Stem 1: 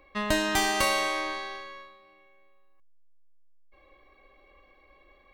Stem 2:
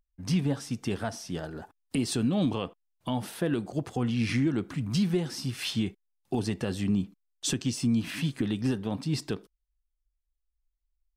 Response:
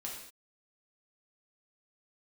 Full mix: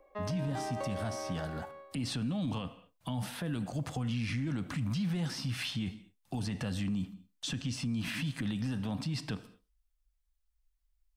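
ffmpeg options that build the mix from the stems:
-filter_complex "[0:a]bandpass=f=590:t=q:w=2.1:csg=0,volume=1.26[s0];[1:a]equalizer=f=380:t=o:w=0.56:g=-14,volume=1.33,asplit=2[s1][s2];[s2]volume=0.224[s3];[2:a]atrim=start_sample=2205[s4];[s3][s4]afir=irnorm=-1:irlink=0[s5];[s0][s1][s5]amix=inputs=3:normalize=0,acrossover=split=290|4300[s6][s7][s8];[s6]acompressor=threshold=0.0501:ratio=4[s9];[s7]acompressor=threshold=0.0158:ratio=4[s10];[s8]acompressor=threshold=0.00355:ratio=4[s11];[s9][s10][s11]amix=inputs=3:normalize=0,alimiter=level_in=1.41:limit=0.0631:level=0:latency=1:release=22,volume=0.708"

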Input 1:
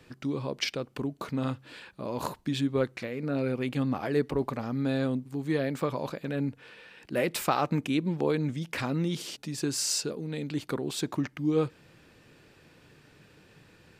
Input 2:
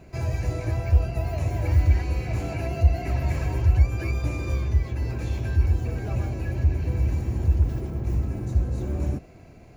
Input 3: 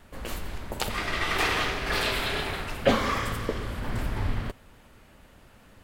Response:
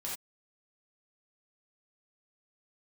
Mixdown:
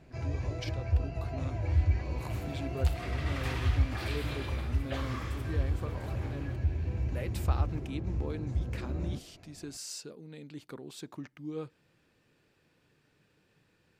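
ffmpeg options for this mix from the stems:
-filter_complex "[0:a]volume=0.237[s0];[1:a]lowpass=5800,flanger=delay=6.1:depth=7:regen=75:speed=1.4:shape=triangular,volume=0.631[s1];[2:a]highpass=680,adelay=2050,volume=0.2[s2];[s0][s1][s2]amix=inputs=3:normalize=0"

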